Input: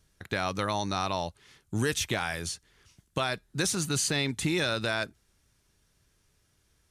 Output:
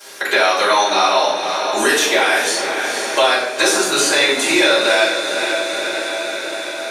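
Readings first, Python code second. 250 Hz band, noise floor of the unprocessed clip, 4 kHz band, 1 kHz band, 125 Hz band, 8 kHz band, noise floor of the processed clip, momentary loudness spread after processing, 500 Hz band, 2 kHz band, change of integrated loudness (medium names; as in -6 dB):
+9.5 dB, -71 dBFS, +17.0 dB, +17.5 dB, -11.0 dB, +13.0 dB, -26 dBFS, 8 LU, +17.5 dB, +18.0 dB, +14.5 dB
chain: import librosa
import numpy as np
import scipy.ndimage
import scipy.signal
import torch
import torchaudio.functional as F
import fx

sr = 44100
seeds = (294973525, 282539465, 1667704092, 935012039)

y = scipy.signal.sosfilt(scipy.signal.butter(4, 380.0, 'highpass', fs=sr, output='sos'), x)
y = fx.echo_diffused(y, sr, ms=482, feedback_pct=53, wet_db=-11.5)
y = fx.room_shoebox(y, sr, seeds[0], volume_m3=170.0, walls='mixed', distance_m=5.1)
y = fx.band_squash(y, sr, depth_pct=70)
y = F.gain(torch.from_numpy(y), 1.5).numpy()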